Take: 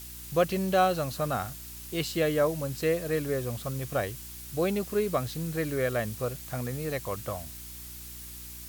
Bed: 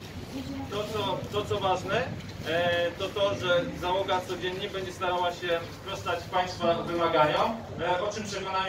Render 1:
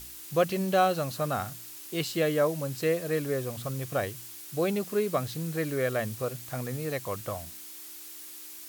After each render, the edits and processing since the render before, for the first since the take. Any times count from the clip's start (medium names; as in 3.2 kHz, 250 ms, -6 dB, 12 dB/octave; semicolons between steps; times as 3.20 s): de-hum 60 Hz, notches 4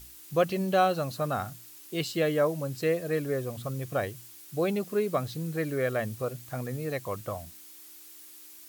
noise reduction 6 dB, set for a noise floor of -44 dBFS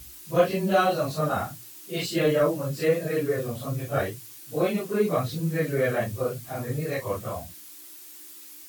phase randomisation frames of 100 ms; in parallel at -4.5 dB: saturation -19.5 dBFS, distortion -15 dB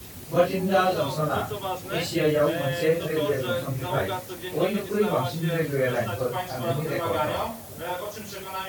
add bed -4 dB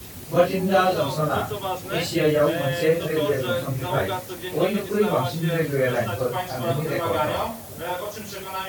trim +2.5 dB